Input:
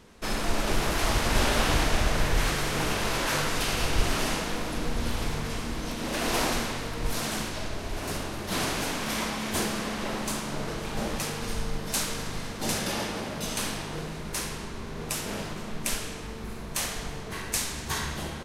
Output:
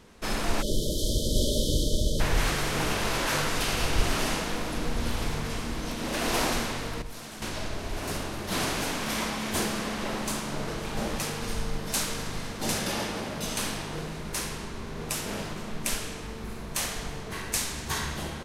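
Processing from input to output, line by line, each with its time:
0.62–2.20 s: spectral selection erased 630–3000 Hz
7.02–7.42 s: gain -11 dB

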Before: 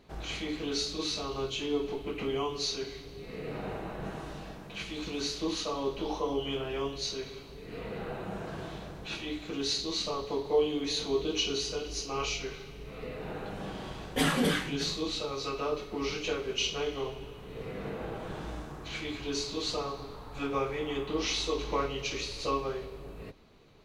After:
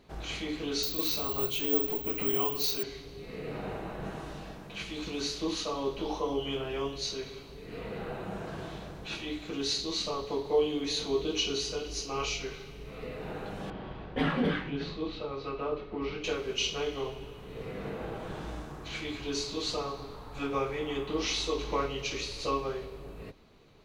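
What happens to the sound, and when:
0.83–2.83 s: careless resampling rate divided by 2×, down none, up zero stuff
13.70–16.24 s: distance through air 350 m

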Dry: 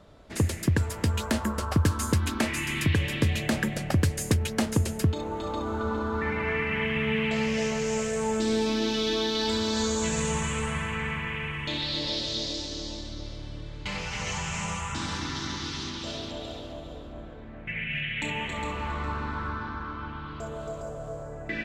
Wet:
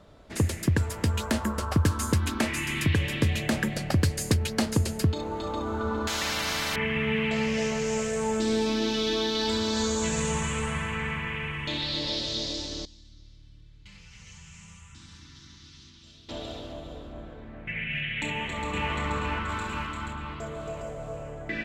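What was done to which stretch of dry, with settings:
3.70–5.46 s: peaking EQ 4.5 kHz +6 dB 0.35 oct
6.07–6.76 s: spectrum-flattening compressor 10:1
12.85–16.29 s: amplifier tone stack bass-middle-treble 6-0-2
18.25–18.90 s: echo throw 480 ms, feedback 55%, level -1 dB
19.49–20.13 s: treble shelf 4.1 kHz +10.5 dB

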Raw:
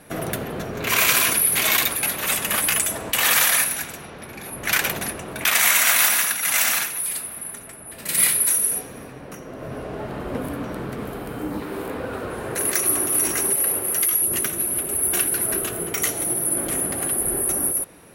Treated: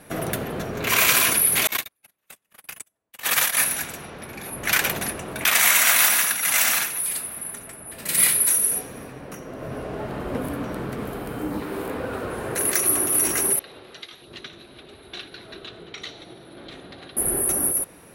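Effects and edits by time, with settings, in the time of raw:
1.67–3.57 s: gate -18 dBFS, range -52 dB
13.59–17.17 s: four-pole ladder low-pass 4.1 kHz, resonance 80%

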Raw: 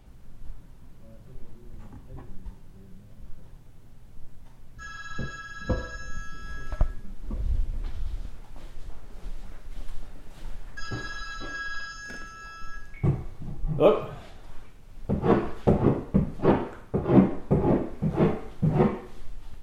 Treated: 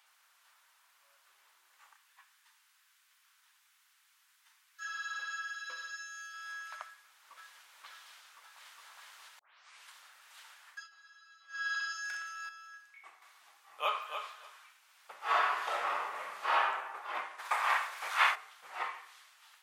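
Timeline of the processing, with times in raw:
1.93–4.85 s: high-pass 1.3 kHz
5.55–6.34 s: static phaser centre 340 Hz, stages 4
6.84–7.68 s: echo throw 530 ms, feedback 65%, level -0.5 dB
8.24–8.87 s: echo throw 410 ms, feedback 65%, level -0.5 dB
9.39 s: tape start 0.51 s
10.67–11.69 s: dip -22 dB, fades 0.21 s
12.49–13.22 s: gain -8 dB
13.74–14.19 s: echo throw 290 ms, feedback 15%, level -8 dB
15.18–16.61 s: reverb throw, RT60 1.1 s, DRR -7 dB
17.38–18.34 s: spectral peaks clipped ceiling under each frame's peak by 24 dB
whole clip: high-pass 1.1 kHz 24 dB/octave; trim +1 dB

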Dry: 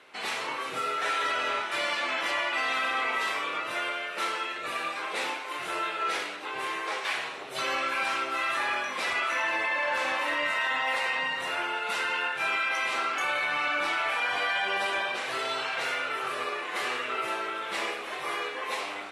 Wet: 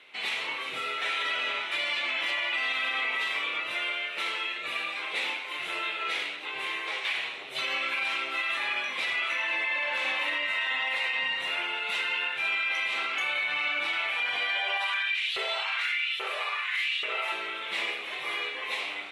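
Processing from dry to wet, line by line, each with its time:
14.53–17.32 s: LFO high-pass saw up 1.2 Hz 400–3700 Hz
whole clip: high-order bell 2.8 kHz +10 dB 1.2 oct; peak limiter -15 dBFS; trim -5.5 dB

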